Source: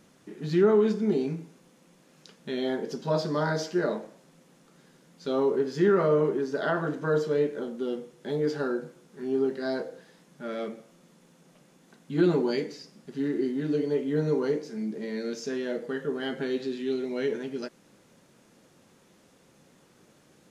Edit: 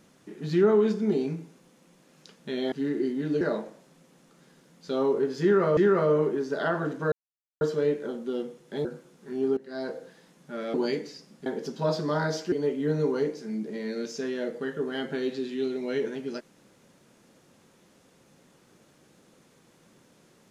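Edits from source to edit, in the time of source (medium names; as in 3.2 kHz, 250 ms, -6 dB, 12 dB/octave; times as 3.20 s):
2.72–3.78 s: swap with 13.11–13.80 s
5.79–6.14 s: loop, 2 plays
7.14 s: insert silence 0.49 s
8.38–8.76 s: delete
9.48–9.88 s: fade in, from -19 dB
10.65–12.39 s: delete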